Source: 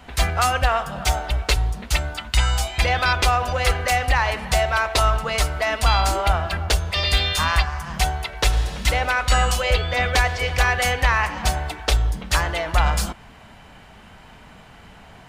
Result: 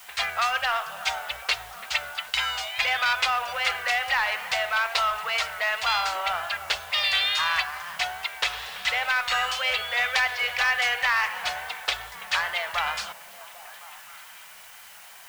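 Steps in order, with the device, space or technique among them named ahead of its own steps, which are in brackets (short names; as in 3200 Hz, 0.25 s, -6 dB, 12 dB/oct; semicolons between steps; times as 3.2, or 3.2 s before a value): tape answering machine (BPF 360–3100 Hz; soft clip -13.5 dBFS, distortion -19 dB; wow and flutter; white noise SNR 28 dB); passive tone stack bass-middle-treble 10-0-10; delay with a stepping band-pass 0.265 s, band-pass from 220 Hz, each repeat 0.7 oct, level -9 dB; gain +6 dB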